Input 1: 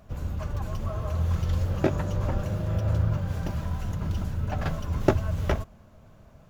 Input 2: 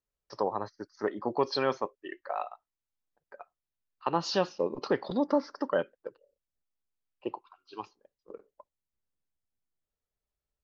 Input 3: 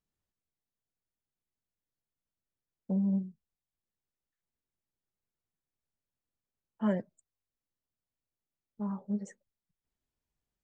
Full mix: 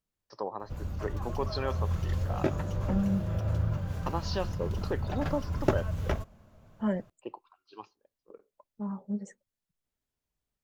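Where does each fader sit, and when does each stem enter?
−4.5, −5.5, 0.0 decibels; 0.60, 0.00, 0.00 seconds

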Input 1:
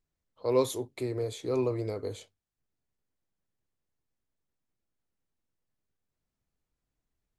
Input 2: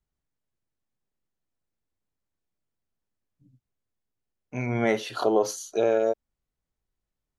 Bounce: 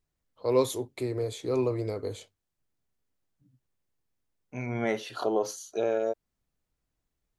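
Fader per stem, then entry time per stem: +1.5, −5.0 decibels; 0.00, 0.00 seconds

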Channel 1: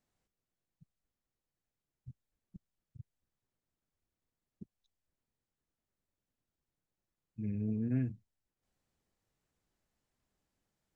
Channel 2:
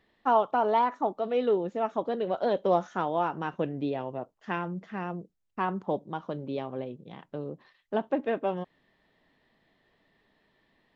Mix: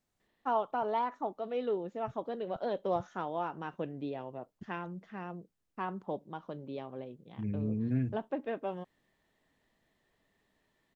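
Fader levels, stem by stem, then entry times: +1.5, −7.5 decibels; 0.00, 0.20 seconds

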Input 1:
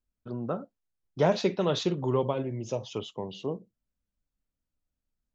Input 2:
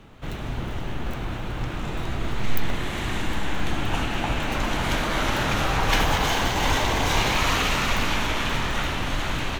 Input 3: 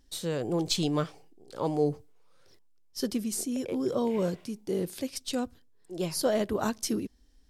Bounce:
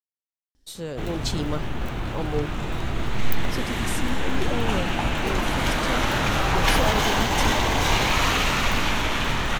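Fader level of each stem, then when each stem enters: muted, +1.0 dB, −1.5 dB; muted, 0.75 s, 0.55 s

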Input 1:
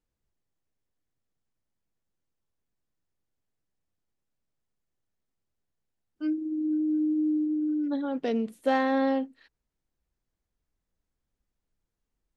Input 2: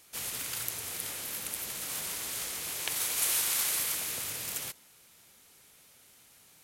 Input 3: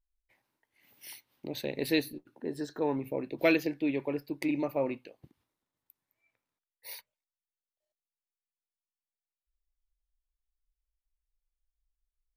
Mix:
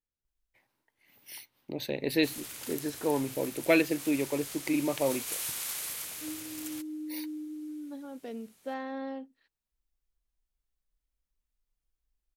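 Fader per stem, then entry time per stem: −12.5, −6.5, +1.5 decibels; 0.00, 2.10, 0.25 seconds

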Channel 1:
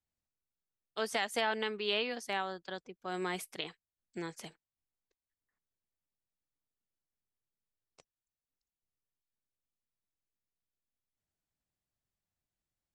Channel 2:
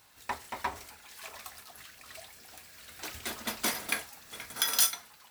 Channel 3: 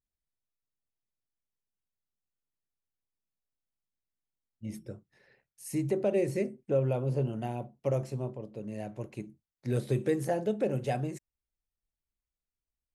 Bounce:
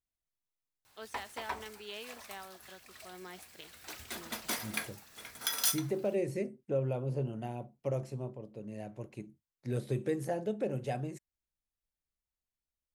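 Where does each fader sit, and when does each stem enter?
−12.0, −5.0, −4.5 decibels; 0.00, 0.85, 0.00 seconds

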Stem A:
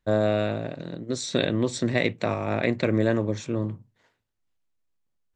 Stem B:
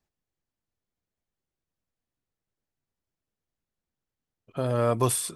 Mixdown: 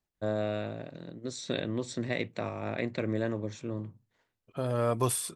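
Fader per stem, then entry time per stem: −8.5, −4.0 decibels; 0.15, 0.00 seconds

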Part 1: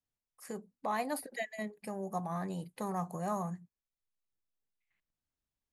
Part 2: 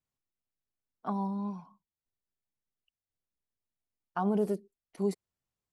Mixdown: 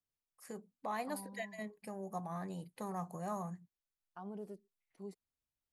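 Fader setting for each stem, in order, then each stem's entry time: −5.0, −17.5 decibels; 0.00, 0.00 seconds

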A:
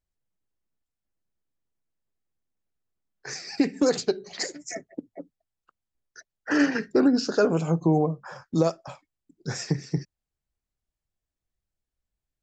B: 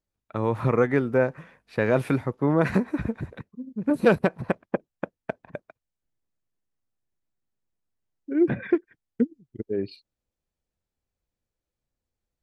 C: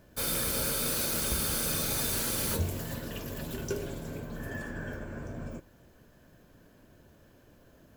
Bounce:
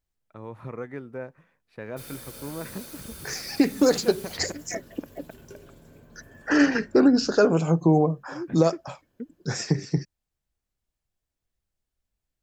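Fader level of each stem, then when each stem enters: +2.5, −14.5, −12.5 decibels; 0.00, 0.00, 1.80 seconds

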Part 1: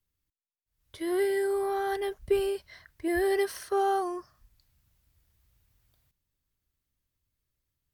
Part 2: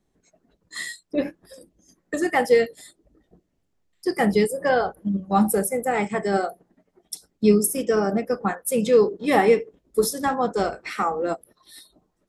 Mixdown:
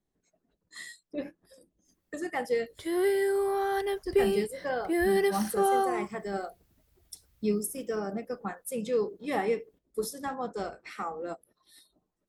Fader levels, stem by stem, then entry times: +1.0, −11.5 decibels; 1.85, 0.00 seconds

